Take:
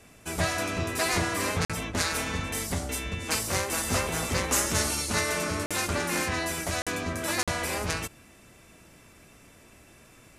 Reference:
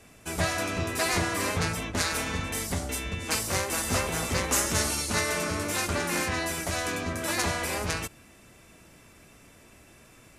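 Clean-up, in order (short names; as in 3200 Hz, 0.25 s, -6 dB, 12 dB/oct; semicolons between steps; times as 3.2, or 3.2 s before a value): interpolate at 1.65/5.66/6.82/7.43, 46 ms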